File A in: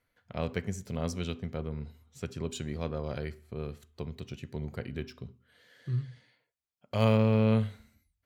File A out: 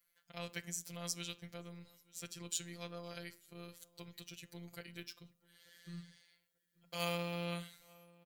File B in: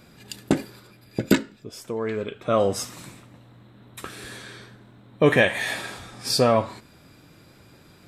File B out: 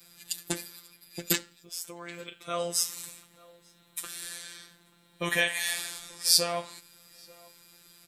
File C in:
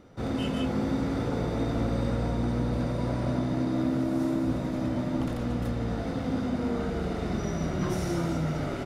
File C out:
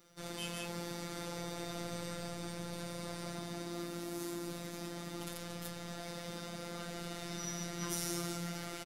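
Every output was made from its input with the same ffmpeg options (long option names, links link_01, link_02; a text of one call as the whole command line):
ffmpeg -i in.wav -filter_complex "[0:a]afftfilt=real='hypot(re,im)*cos(PI*b)':imag='0':win_size=1024:overlap=0.75,asplit=2[link_01][link_02];[link_02]adelay=886,lowpass=frequency=2000:poles=1,volume=-23.5dB,asplit=2[link_03][link_04];[link_04]adelay=886,lowpass=frequency=2000:poles=1,volume=0.19[link_05];[link_01][link_03][link_05]amix=inputs=3:normalize=0,crystalizer=i=10:c=0,volume=-11.5dB" out.wav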